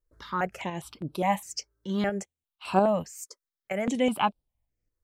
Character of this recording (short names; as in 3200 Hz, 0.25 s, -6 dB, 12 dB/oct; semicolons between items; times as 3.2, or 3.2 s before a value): tremolo saw up 4.3 Hz, depth 45%; notches that jump at a steady rate 4.9 Hz 750–6600 Hz